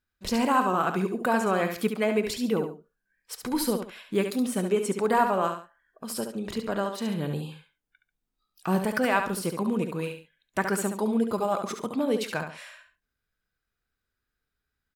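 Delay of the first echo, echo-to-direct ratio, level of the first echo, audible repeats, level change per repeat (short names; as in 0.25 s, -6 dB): 70 ms, -6.5 dB, -7.0 dB, 2, -10.0 dB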